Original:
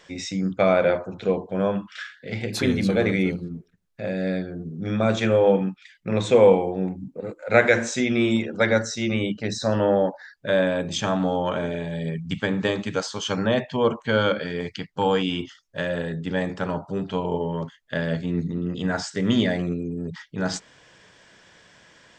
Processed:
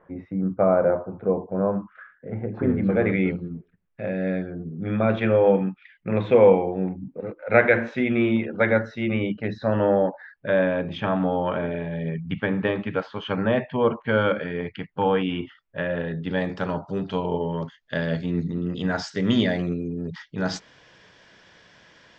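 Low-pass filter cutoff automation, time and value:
low-pass filter 24 dB per octave
0:02.62 1,300 Hz
0:03.18 2,700 Hz
0:15.90 2,700 Hz
0:16.59 5,800 Hz

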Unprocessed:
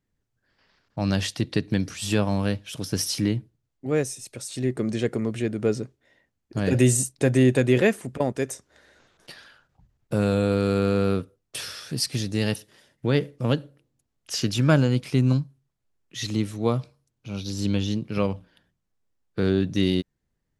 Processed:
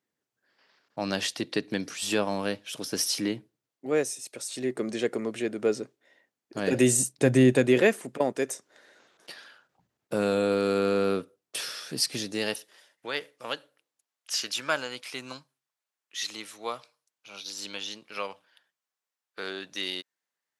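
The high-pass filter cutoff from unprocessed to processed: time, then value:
0:06.58 320 Hz
0:07.36 120 Hz
0:07.87 280 Hz
0:12.18 280 Hz
0:13.13 890 Hz

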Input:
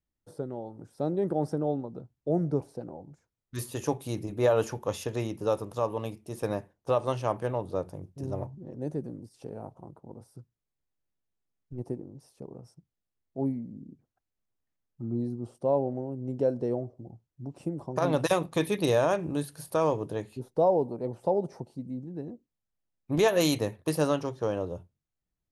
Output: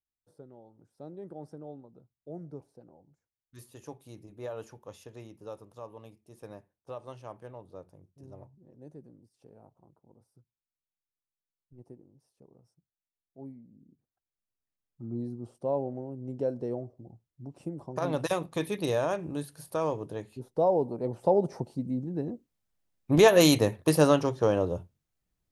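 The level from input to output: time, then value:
0:13.62 −15 dB
0:15.18 −4 dB
0:20.27 −4 dB
0:21.62 +5 dB

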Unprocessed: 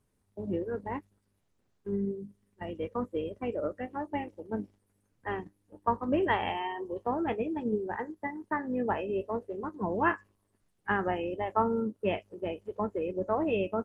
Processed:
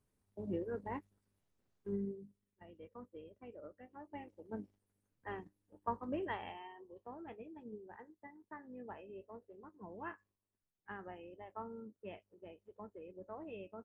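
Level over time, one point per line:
0:01.93 −6.5 dB
0:02.67 −19 dB
0:03.84 −19 dB
0:04.49 −10 dB
0:05.99 −10 dB
0:06.86 −19 dB

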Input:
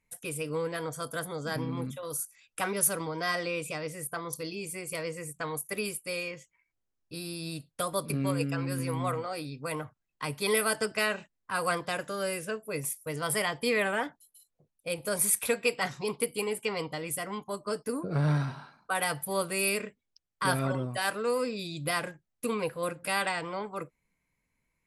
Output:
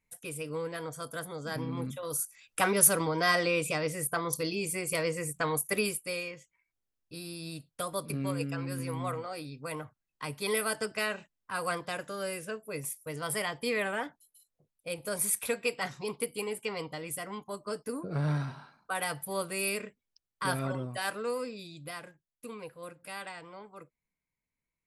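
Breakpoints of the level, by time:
0:01.42 −3.5 dB
0:02.61 +4.5 dB
0:05.74 +4.5 dB
0:06.34 −3.5 dB
0:21.22 −3.5 dB
0:21.98 −12 dB

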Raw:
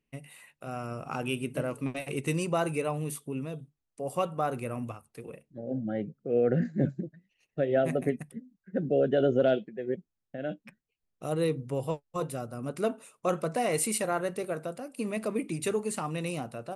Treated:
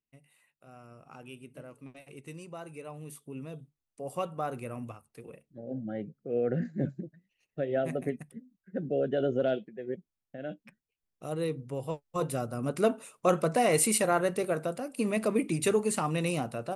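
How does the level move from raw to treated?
0:02.66 −15 dB
0:03.56 −4 dB
0:11.84 −4 dB
0:12.34 +3.5 dB

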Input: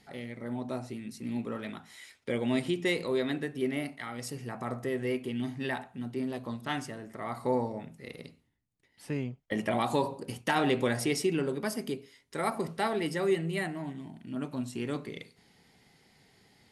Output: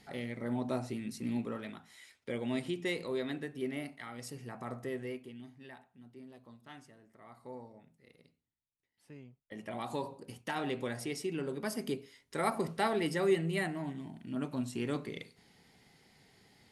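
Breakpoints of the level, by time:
0:01.22 +1 dB
0:01.77 −6 dB
0:04.94 −6 dB
0:05.52 −18 dB
0:09.30 −18 dB
0:09.91 −9 dB
0:11.21 −9 dB
0:11.92 −1 dB

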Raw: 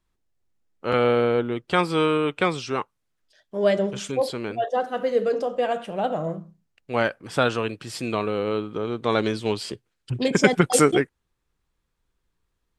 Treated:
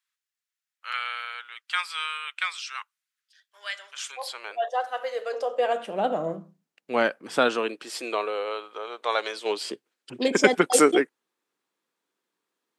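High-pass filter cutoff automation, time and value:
high-pass filter 24 dB per octave
0:03.79 1,400 Hz
0:04.54 620 Hz
0:05.27 620 Hz
0:06.00 200 Hz
0:07.33 200 Hz
0:08.57 570 Hz
0:09.29 570 Hz
0:09.72 250 Hz

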